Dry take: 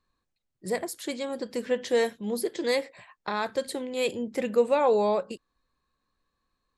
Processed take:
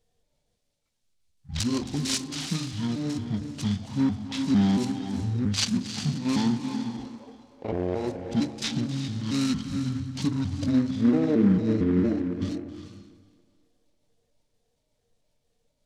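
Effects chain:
pitch shifter gated in a rhythm +4 semitones, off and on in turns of 97 ms
high shelf with overshoot 6,700 Hz +8 dB, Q 1.5
hum removal 101.5 Hz, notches 33
convolution reverb RT60 0.40 s, pre-delay 114 ms, DRR 9 dB
in parallel at +1 dB: downward compressor, threshold −34 dBFS, peak gain reduction 15 dB
on the sum: parametric band 4,000 Hz −14.5 dB 1.5 octaves
feedback echo with a high-pass in the loop 115 ms, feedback 42%, high-pass 310 Hz, level −15.5 dB
wrong playback speed 78 rpm record played at 33 rpm
short delay modulated by noise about 1,300 Hz, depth 0.033 ms

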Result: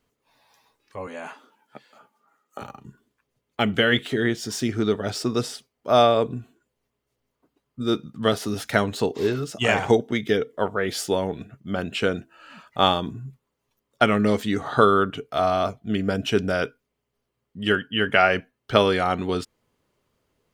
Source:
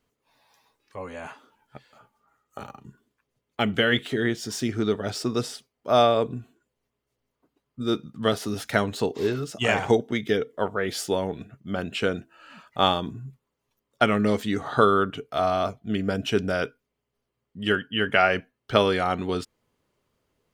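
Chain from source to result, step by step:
0:01.07–0:02.62: high-pass filter 180 Hz 24 dB per octave
level +2 dB

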